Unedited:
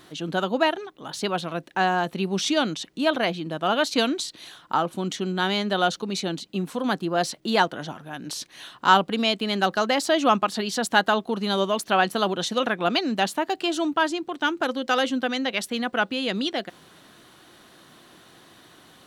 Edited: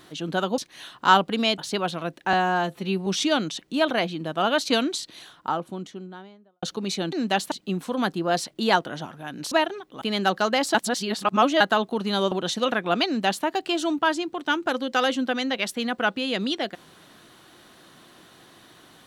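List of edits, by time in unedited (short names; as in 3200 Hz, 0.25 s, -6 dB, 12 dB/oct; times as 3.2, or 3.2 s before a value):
0.58–1.08 swap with 8.38–9.38
1.83–2.32 stretch 1.5×
4.23–5.88 studio fade out
10.11–10.97 reverse
11.68–12.26 cut
13–13.39 copy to 6.38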